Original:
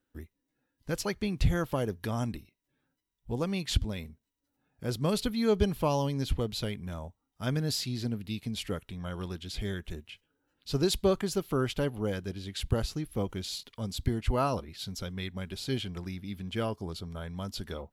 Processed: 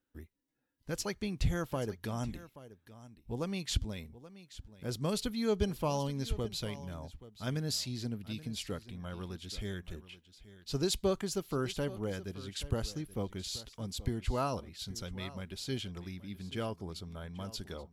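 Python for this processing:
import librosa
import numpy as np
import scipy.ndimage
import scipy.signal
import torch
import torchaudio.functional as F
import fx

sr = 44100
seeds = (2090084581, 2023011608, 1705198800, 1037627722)

p1 = fx.dynamic_eq(x, sr, hz=6700.0, q=1.2, threshold_db=-53.0, ratio=4.0, max_db=5)
p2 = p1 + fx.echo_single(p1, sr, ms=829, db=-16.5, dry=0)
y = p2 * 10.0 ** (-5.0 / 20.0)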